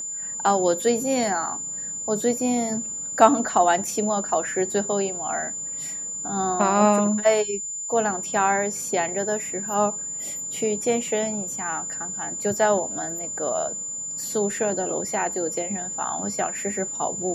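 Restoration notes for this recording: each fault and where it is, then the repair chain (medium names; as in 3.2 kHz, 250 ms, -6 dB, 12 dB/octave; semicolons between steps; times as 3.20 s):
whine 7.1 kHz -29 dBFS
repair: band-stop 7.1 kHz, Q 30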